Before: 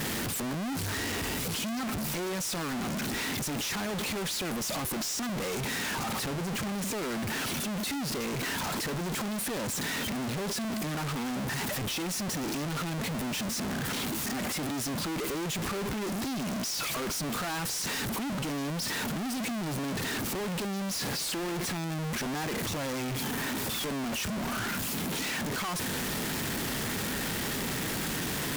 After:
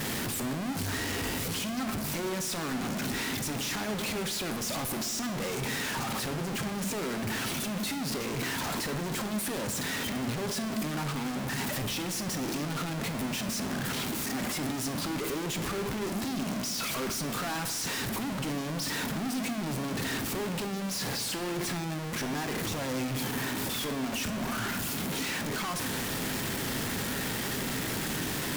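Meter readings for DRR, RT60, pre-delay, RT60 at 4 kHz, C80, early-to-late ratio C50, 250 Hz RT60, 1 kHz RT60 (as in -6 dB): 7.0 dB, 1.3 s, 7 ms, 0.95 s, 12.0 dB, 10.0 dB, 2.2 s, 1.2 s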